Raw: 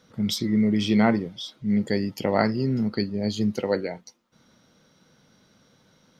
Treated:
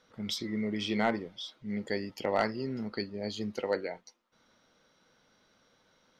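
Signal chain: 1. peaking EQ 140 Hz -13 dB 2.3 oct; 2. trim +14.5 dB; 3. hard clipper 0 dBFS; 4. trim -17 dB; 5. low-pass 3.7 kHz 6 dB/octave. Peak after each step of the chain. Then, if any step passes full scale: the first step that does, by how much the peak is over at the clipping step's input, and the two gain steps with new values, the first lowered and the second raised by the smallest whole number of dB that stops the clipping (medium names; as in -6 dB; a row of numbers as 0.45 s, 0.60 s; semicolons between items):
-7.5 dBFS, +7.0 dBFS, 0.0 dBFS, -17.0 dBFS, -17.0 dBFS; step 2, 7.0 dB; step 2 +7.5 dB, step 4 -10 dB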